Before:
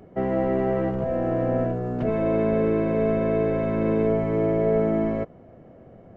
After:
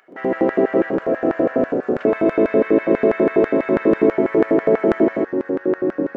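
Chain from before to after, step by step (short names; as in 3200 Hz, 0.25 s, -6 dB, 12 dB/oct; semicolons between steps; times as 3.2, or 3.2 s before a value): echoes that change speed 0.123 s, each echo -3 st, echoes 2, each echo -6 dB; LFO high-pass square 6.1 Hz 310–1600 Hz; gain +4 dB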